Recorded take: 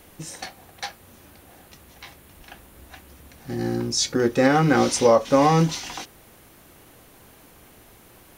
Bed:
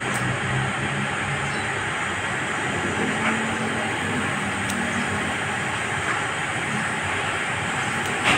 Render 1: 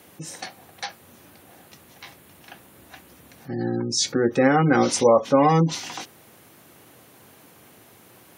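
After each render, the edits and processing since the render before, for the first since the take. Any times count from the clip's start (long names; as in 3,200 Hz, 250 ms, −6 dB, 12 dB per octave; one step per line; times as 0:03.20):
high-pass filter 98 Hz 24 dB per octave
gate on every frequency bin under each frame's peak −30 dB strong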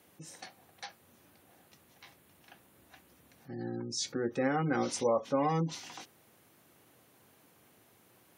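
level −12.5 dB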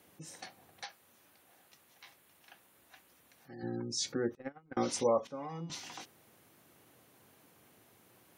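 0:00.84–0:03.63: low-shelf EQ 420 Hz −11 dB
0:04.35–0:04.77: noise gate −27 dBFS, range −35 dB
0:05.27–0:05.70: tuned comb filter 170 Hz, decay 1 s, mix 80%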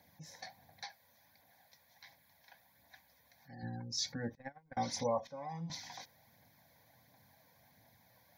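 phase shifter 1.4 Hz, delay 2.2 ms, feedback 34%
phaser with its sweep stopped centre 1,900 Hz, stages 8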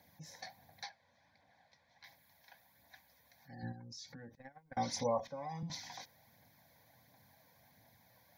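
0:00.89–0:02.04: high-frequency loss of the air 130 metres
0:03.72–0:04.66: downward compressor, threshold −48 dBFS
0:05.19–0:05.63: multiband upward and downward compressor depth 70%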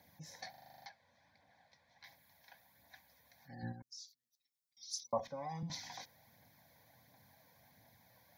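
0:00.50: stutter in place 0.04 s, 9 plays
0:03.82–0:05.13: inverse Chebyshev high-pass filter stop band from 1,700 Hz, stop band 50 dB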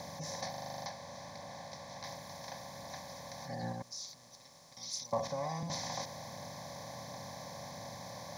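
compressor on every frequency bin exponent 0.4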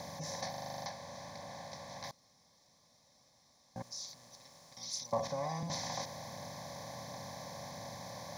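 0:02.11–0:03.76: fill with room tone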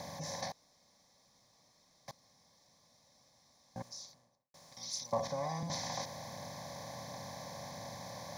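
0:00.52–0:02.08: fill with room tone
0:03.79–0:04.54: fade out and dull
0:05.20–0:05.74: notch filter 2,700 Hz, Q 10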